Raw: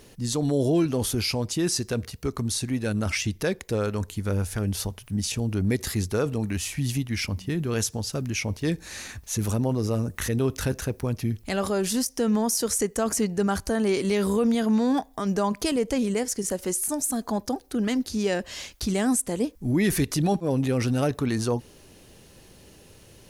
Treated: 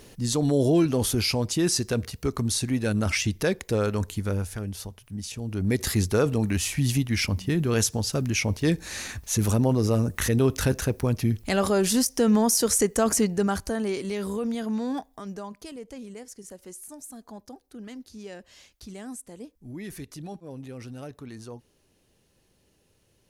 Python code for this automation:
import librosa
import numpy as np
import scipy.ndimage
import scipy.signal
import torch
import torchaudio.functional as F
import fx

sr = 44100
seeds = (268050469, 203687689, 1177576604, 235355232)

y = fx.gain(x, sr, db=fx.line((4.14, 1.5), (4.75, -7.5), (5.37, -7.5), (5.85, 3.0), (13.13, 3.0), (14.07, -6.5), (14.98, -6.5), (15.6, -15.5)))